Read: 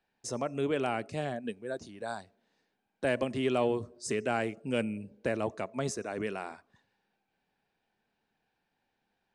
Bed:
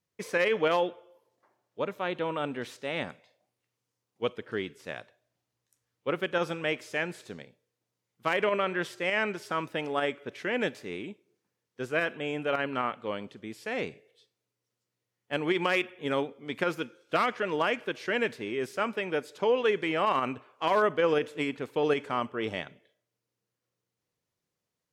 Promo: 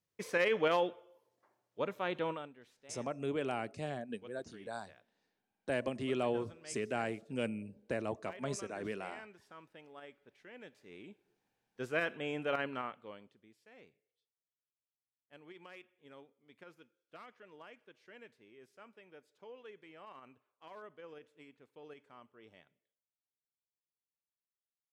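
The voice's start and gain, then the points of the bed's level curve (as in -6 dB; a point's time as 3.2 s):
2.65 s, -5.5 dB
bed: 2.3 s -4.5 dB
2.54 s -23 dB
10.66 s -23 dB
11.32 s -5.5 dB
12.59 s -5.5 dB
13.65 s -26.5 dB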